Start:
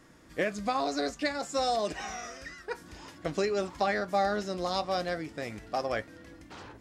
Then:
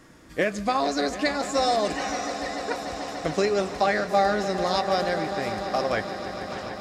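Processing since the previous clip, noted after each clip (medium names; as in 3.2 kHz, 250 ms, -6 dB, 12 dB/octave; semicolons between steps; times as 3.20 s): echo with a slow build-up 147 ms, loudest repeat 5, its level -15 dB; trim +5.5 dB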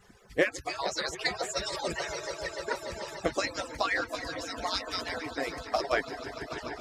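harmonic-percussive separation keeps percussive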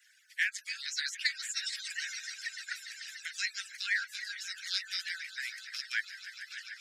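steep high-pass 1.5 kHz 96 dB/octave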